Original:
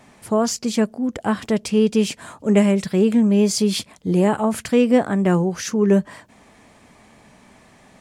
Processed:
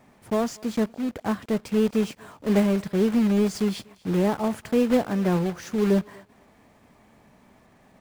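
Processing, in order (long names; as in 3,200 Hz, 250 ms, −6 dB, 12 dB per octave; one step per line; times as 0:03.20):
one scale factor per block 3 bits
high-shelf EQ 2,500 Hz −11 dB
on a send: feedback echo with a high-pass in the loop 240 ms, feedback 27%, high-pass 500 Hz, level −22.5 dB
on the sum: level −5 dB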